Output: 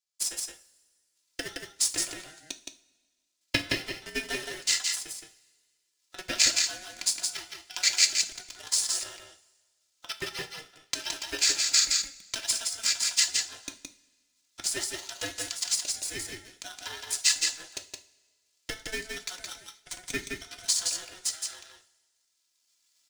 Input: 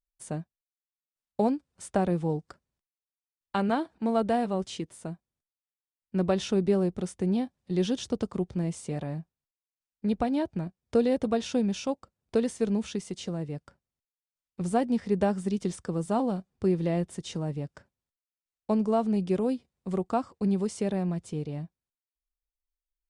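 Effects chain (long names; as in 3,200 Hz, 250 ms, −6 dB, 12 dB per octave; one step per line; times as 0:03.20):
running median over 3 samples
camcorder AGC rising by 9.7 dB per second
Bessel high-pass filter 2,800 Hz, order 2
parametric band 6,000 Hz +12 dB 0.91 octaves
comb filter 2.9 ms, depth 84%
ring modulation 1,100 Hz
in parallel at −7.5 dB: bit reduction 7 bits
on the sum: transient designer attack +7 dB, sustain +2 dB
on a send: single-tap delay 168 ms −4 dB
on the sum: coupled-rooms reverb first 0.37 s, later 1.7 s, from −18 dB, DRR 7.5 dB
level +3 dB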